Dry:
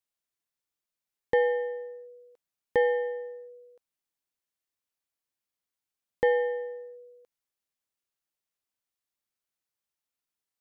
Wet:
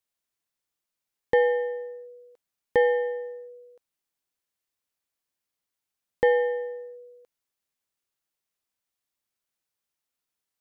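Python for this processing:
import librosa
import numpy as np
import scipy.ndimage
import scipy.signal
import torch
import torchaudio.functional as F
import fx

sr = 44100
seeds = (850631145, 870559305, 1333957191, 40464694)

y = fx.quant_float(x, sr, bits=8)
y = y * librosa.db_to_amplitude(3.0)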